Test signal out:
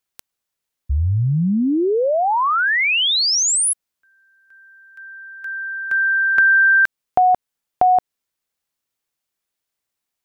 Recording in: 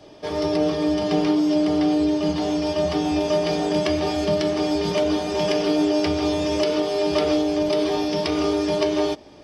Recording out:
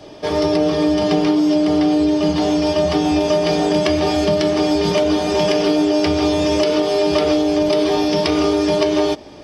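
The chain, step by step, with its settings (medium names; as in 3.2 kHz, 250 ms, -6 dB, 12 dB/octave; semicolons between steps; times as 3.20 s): compression 4:1, threshold -20 dBFS; trim +7.5 dB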